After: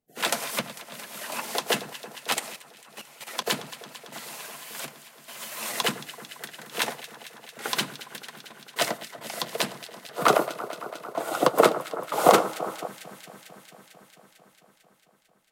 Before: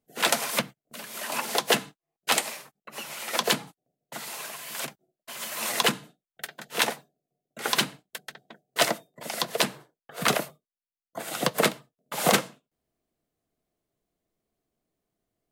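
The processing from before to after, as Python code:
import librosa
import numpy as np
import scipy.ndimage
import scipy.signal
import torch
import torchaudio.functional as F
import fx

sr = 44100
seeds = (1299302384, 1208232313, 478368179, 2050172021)

y = fx.echo_alternate(x, sr, ms=112, hz=1600.0, feedback_pct=88, wet_db=-13.5)
y = fx.level_steps(y, sr, step_db=12, at=(2.34, 3.47))
y = fx.spec_box(y, sr, start_s=10.18, length_s=2.69, low_hz=260.0, high_hz=1500.0, gain_db=10)
y = y * librosa.db_to_amplitude(-3.0)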